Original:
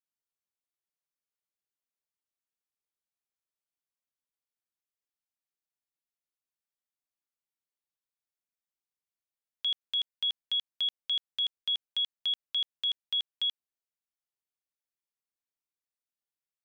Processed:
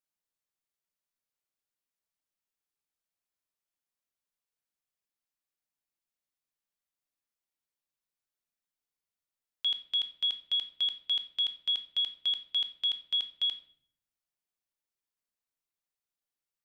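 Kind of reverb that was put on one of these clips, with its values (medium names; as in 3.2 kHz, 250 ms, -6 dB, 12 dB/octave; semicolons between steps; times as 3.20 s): simulated room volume 100 m³, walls mixed, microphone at 0.36 m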